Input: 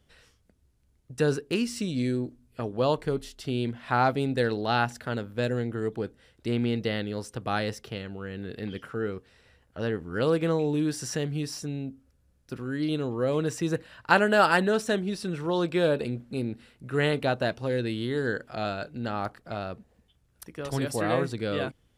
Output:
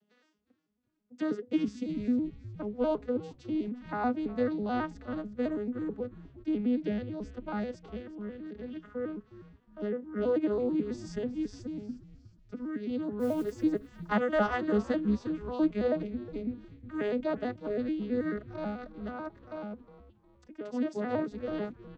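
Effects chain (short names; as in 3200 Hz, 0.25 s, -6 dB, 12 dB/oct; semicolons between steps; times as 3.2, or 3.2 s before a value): arpeggiated vocoder minor triad, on G#3, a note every 0.109 s; 13.19–13.62 modulation noise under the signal 28 dB; frequency-shifting echo 0.361 s, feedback 42%, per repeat -140 Hz, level -16 dB; gain -3.5 dB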